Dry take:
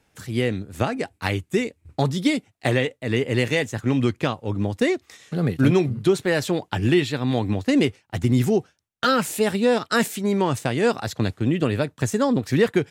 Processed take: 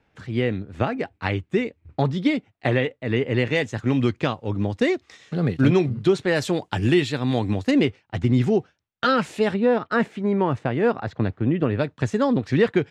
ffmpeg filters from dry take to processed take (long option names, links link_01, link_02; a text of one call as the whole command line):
ffmpeg -i in.wav -af "asetnsamples=nb_out_samples=441:pad=0,asendcmd='3.55 lowpass f 5400;6.36 lowpass f 9300;7.71 lowpass f 3800;9.54 lowpass f 1900;11.79 lowpass f 3900',lowpass=3000" out.wav